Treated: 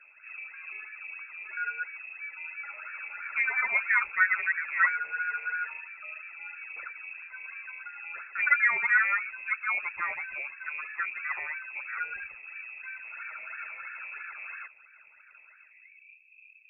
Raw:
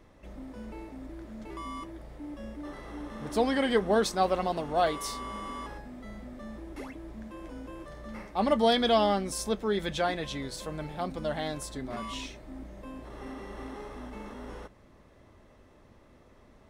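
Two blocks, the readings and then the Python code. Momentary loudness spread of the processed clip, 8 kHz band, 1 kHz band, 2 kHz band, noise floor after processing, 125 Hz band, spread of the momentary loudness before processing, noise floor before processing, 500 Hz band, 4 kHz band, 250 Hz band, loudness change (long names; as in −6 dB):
17 LU, below −35 dB, −4.0 dB, +14.5 dB, −57 dBFS, below −30 dB, 19 LU, −58 dBFS, −26.0 dB, below −25 dB, below −35 dB, +0.5 dB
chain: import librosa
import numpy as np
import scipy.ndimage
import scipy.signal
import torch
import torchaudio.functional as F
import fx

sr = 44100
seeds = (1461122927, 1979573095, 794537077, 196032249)

y = fx.filter_sweep_lowpass(x, sr, from_hz=1200.0, to_hz=180.0, start_s=15.59, end_s=16.18, q=3.5)
y = fx.phaser_stages(y, sr, stages=6, low_hz=130.0, high_hz=1100.0, hz=3.0, feedback_pct=30)
y = fx.freq_invert(y, sr, carrier_hz=2600)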